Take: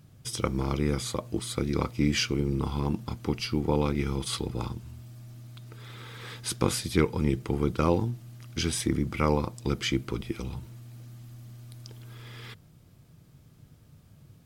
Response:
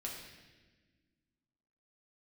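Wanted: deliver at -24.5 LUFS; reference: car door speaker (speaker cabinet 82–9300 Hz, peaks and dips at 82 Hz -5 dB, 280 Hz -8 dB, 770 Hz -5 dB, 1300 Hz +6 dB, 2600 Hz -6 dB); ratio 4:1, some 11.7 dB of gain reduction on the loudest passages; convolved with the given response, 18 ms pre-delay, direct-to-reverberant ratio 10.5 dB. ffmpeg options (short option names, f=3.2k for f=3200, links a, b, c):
-filter_complex "[0:a]acompressor=threshold=-33dB:ratio=4,asplit=2[a][b];[1:a]atrim=start_sample=2205,adelay=18[c];[b][c]afir=irnorm=-1:irlink=0,volume=-10dB[d];[a][d]amix=inputs=2:normalize=0,highpass=82,equalizer=f=82:t=q:w=4:g=-5,equalizer=f=280:t=q:w=4:g=-8,equalizer=f=770:t=q:w=4:g=-5,equalizer=f=1.3k:t=q:w=4:g=6,equalizer=f=2.6k:t=q:w=4:g=-6,lowpass=f=9.3k:w=0.5412,lowpass=f=9.3k:w=1.3066,volume=15dB"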